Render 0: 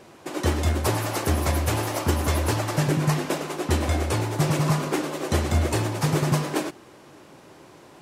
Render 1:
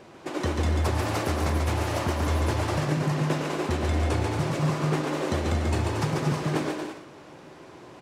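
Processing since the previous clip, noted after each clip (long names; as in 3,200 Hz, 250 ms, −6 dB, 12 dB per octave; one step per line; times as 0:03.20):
parametric band 14,000 Hz −12 dB 1.2 octaves
downward compressor, threshold −24 dBFS, peak gain reduction 7.5 dB
on a send: bouncing-ball delay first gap 140 ms, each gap 0.65×, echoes 5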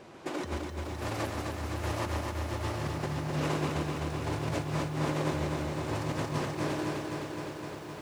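compressor whose output falls as the input rises −29 dBFS, ratio −0.5
feedback echo at a low word length 257 ms, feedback 80%, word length 9 bits, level −4.5 dB
level −6 dB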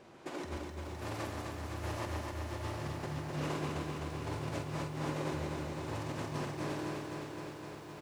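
double-tracking delay 48 ms −7.5 dB
level −6.5 dB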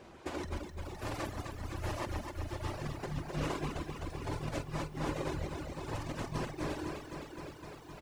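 sub-octave generator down 2 octaves, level −4 dB
reverb reduction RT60 1.9 s
level +3 dB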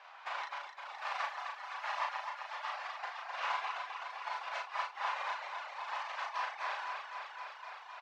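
Butterworth high-pass 790 Hz 36 dB per octave
high-frequency loss of the air 220 metres
double-tracking delay 36 ms −3 dB
level +6.5 dB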